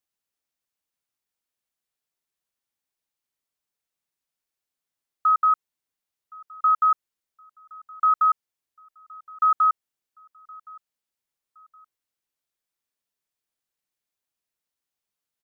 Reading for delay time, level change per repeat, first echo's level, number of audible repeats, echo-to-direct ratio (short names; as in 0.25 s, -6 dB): 1.068 s, -9.5 dB, -24.0 dB, 2, -23.5 dB